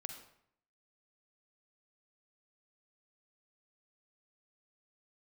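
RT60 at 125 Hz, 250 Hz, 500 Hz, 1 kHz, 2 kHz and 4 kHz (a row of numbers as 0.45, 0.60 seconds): 0.85, 0.75, 0.65, 0.65, 0.60, 0.50 seconds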